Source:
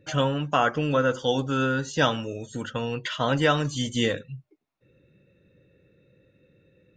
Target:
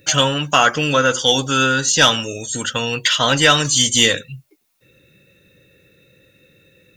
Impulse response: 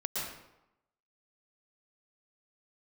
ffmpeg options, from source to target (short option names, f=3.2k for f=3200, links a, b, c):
-af "crystalizer=i=9:c=0,acontrast=28,volume=-1dB"